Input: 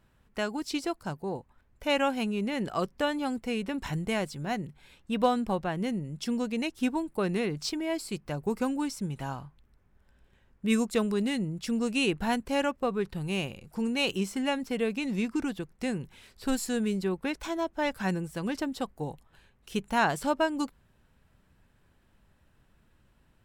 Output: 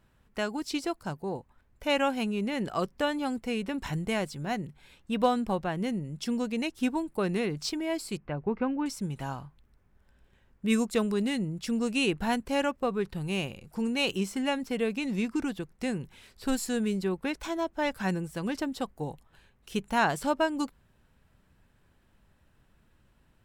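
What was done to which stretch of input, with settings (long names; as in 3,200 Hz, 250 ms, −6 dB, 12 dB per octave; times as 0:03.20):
0:08.17–0:08.86: low-pass filter 2,700 Hz 24 dB per octave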